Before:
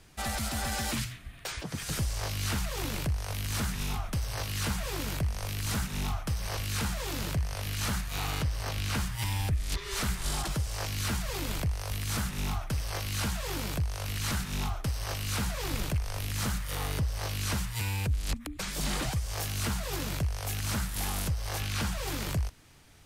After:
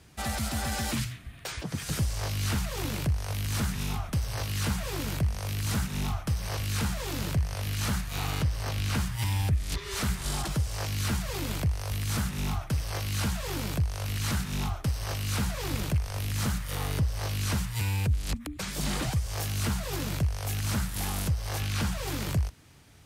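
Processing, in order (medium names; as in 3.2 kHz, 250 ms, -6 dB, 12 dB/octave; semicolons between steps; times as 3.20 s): high-pass 59 Hz; bass shelf 280 Hz +5 dB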